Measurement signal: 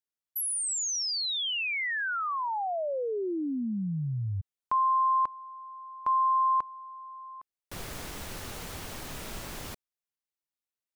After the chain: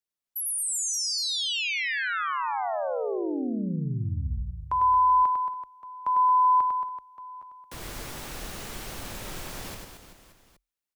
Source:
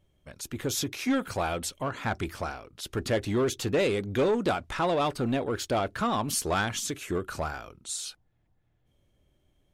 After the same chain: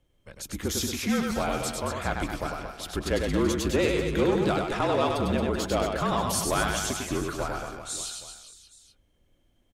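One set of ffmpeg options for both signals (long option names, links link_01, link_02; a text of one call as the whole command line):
ffmpeg -i in.wav -af "aecho=1:1:100|225|381.2|576.6|820.7:0.631|0.398|0.251|0.158|0.1,afreqshift=-43" out.wav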